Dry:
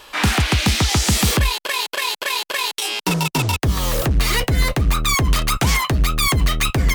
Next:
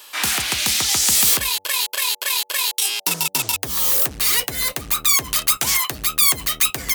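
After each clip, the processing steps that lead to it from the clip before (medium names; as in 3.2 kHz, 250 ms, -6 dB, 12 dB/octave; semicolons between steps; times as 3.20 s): RIAA curve recording; de-hum 96 Hz, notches 9; trim -5.5 dB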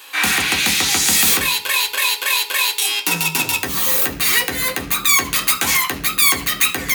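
reverberation RT60 0.45 s, pre-delay 3 ms, DRR 1 dB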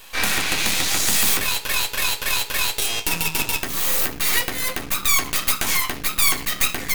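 half-wave rectifier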